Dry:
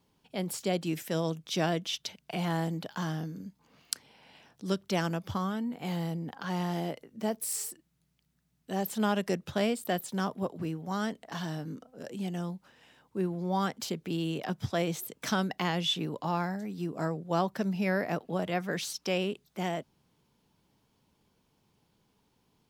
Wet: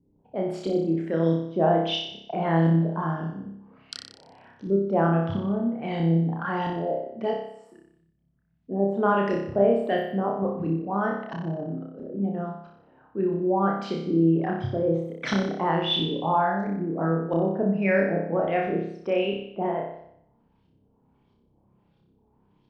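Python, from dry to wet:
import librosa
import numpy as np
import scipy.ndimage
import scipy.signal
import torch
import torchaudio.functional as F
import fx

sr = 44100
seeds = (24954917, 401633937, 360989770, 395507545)

y = fx.envelope_sharpen(x, sr, power=1.5)
y = fx.filter_lfo_lowpass(y, sr, shape='saw_up', hz=1.5, low_hz=290.0, high_hz=3800.0, q=1.4)
y = fx.room_flutter(y, sr, wall_m=5.2, rt60_s=0.72)
y = F.gain(torch.from_numpy(y), 3.0).numpy()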